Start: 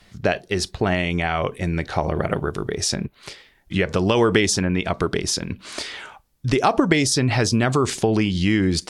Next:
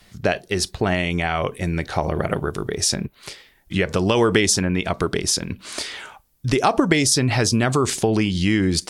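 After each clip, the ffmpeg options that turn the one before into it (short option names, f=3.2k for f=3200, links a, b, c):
-af "highshelf=f=9.6k:g=11.5"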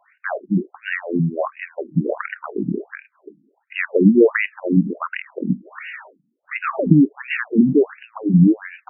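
-af "equalizer=f=120:w=0.55:g=14.5,afftfilt=real='re*between(b*sr/1024,220*pow(2100/220,0.5+0.5*sin(2*PI*1.4*pts/sr))/1.41,220*pow(2100/220,0.5+0.5*sin(2*PI*1.4*pts/sr))*1.41)':imag='im*between(b*sr/1024,220*pow(2100/220,0.5+0.5*sin(2*PI*1.4*pts/sr))/1.41,220*pow(2100/220,0.5+0.5*sin(2*PI*1.4*pts/sr))*1.41)':win_size=1024:overlap=0.75,volume=3.5dB"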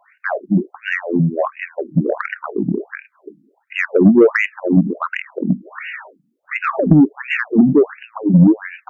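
-af "acontrast=30,volume=-1dB"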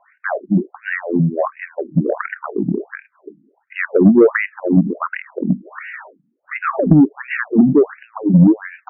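-af "lowpass=f=2.1k:w=0.5412,lowpass=f=2.1k:w=1.3066"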